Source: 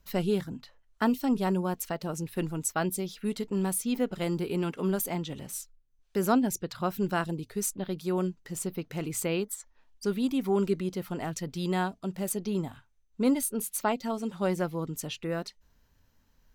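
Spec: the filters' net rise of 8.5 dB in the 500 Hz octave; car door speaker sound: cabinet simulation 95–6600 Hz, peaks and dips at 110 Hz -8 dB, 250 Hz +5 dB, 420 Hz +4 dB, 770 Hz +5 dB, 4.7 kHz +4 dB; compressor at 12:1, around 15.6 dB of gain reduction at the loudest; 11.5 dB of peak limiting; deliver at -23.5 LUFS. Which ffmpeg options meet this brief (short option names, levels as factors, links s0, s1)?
-af "equalizer=f=500:t=o:g=7.5,acompressor=threshold=0.0224:ratio=12,alimiter=level_in=2.82:limit=0.0631:level=0:latency=1,volume=0.355,highpass=95,equalizer=f=110:t=q:w=4:g=-8,equalizer=f=250:t=q:w=4:g=5,equalizer=f=420:t=q:w=4:g=4,equalizer=f=770:t=q:w=4:g=5,equalizer=f=4700:t=q:w=4:g=4,lowpass=f=6600:w=0.5412,lowpass=f=6600:w=1.3066,volume=7.08"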